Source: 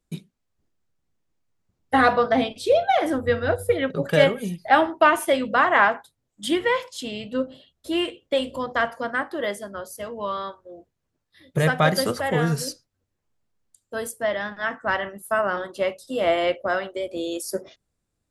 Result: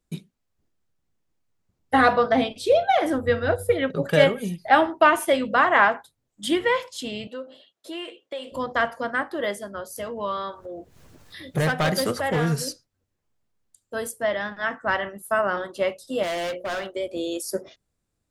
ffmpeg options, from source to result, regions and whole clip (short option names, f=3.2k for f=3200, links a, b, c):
-filter_complex "[0:a]asettb=1/sr,asplit=3[a][b][c];[a]atrim=end=7.274[d];[b]atrim=start=7.27:end=8.52,asetpts=PTS-STARTPTS,afade=t=in:d=0.004:c=qsin,afade=t=out:st=1.246:d=0.004:c=qsin,highpass=390,highshelf=f=9.3k:g=-7,acompressor=threshold=-33dB:ratio=2.5:attack=3.2:release=140:knee=1:detection=peak[e];[c]atrim=start=8.516[f];[d][e]acrossfade=d=0.004:c1=hsin:c2=qsin[g];[g][f]acrossfade=d=0.004:c1=qsin:c2=hsin,asettb=1/sr,asplit=3[h][i][j];[h]atrim=end=9.964[k];[i]atrim=start=9.96:end=12.61,asetpts=PTS-STARTPTS,afade=t=in:d=0.004:c=qsin,afade=t=out:st=2.646:d=0.004:c=qsin,acompressor=mode=upward:threshold=-27dB:ratio=2.5:attack=3.2:release=140:knee=2.83:detection=peak,asoftclip=type=hard:threshold=-18dB[l];[j]atrim=start=12.606[m];[k][l]acrossfade=d=0.004:c1=hsin:c2=qsin[n];[n][m]acrossfade=d=0.004:c1=qsin:c2=hsin,asettb=1/sr,asplit=3[o][p][q];[o]atrim=end=16.234[r];[p]atrim=start=16.23:end=16.9,asetpts=PTS-STARTPTS,afade=t=in:d=0.004:c=qsin,afade=t=out:st=0.666:d=0.004:c=qsin,highshelf=f=5.5k:g=8.5,bandreject=f=60:t=h:w=6,bandreject=f=120:t=h:w=6,bandreject=f=180:t=h:w=6,bandreject=f=240:t=h:w=6,bandreject=f=300:t=h:w=6,bandreject=f=360:t=h:w=6,bandreject=f=420:t=h:w=6,bandreject=f=480:t=h:w=6,bandreject=f=540:t=h:w=6,asoftclip=type=hard:threshold=-26dB[s];[q]atrim=start=16.896[t];[r][s]acrossfade=d=0.004:c1=hsin:c2=qsin[u];[u][t]acrossfade=d=0.004:c1=qsin:c2=hsin"